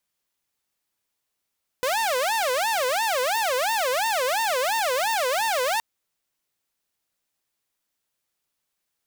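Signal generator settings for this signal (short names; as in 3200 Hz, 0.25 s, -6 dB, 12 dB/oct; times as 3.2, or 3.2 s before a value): siren wail 497–914 Hz 2.9/s saw -19 dBFS 3.97 s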